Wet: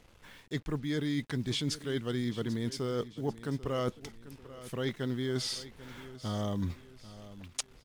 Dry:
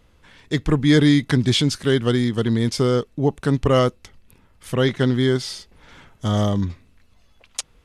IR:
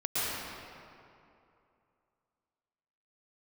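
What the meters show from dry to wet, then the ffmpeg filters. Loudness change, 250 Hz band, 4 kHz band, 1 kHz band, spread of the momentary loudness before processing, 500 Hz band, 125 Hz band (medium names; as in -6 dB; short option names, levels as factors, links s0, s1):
-15.0 dB, -15.0 dB, -12.5 dB, -14.0 dB, 13 LU, -14.5 dB, -15.5 dB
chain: -af "equalizer=f=77:t=o:w=1.5:g=-3,areverse,acompressor=threshold=0.0447:ratio=6,areverse,acrusher=bits=8:mix=0:aa=0.5,aecho=1:1:791|1582|2373|3164:0.158|0.0634|0.0254|0.0101,volume=0.668"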